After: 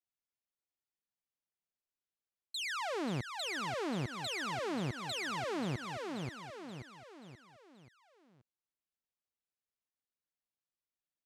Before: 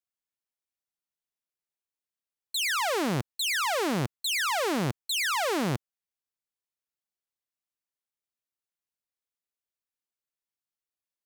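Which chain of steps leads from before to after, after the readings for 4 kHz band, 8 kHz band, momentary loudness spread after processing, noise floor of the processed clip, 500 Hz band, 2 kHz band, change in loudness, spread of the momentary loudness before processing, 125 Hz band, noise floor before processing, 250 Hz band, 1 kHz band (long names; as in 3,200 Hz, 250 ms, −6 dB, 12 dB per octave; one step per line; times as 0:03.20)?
−10.5 dB, −14.5 dB, 13 LU, below −85 dBFS, −8.0 dB, −10.0 dB, −10.5 dB, 4 LU, −6.5 dB, below −85 dBFS, −7.0 dB, −9.0 dB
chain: high-frequency loss of the air 57 metres
on a send: repeating echo 531 ms, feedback 46%, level −9 dB
on the sum: downward compressor 4 to 1, threshold −31 dBFS, peak gain reduction 6 dB
low-shelf EQ 460 Hz +4.5 dB
level −6 dB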